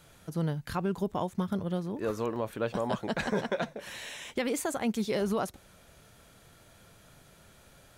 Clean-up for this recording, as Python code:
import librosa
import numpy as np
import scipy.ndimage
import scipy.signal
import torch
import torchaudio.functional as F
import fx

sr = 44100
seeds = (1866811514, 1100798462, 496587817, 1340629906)

y = fx.fix_interpolate(x, sr, at_s=(2.36, 4.28), length_ms=1.2)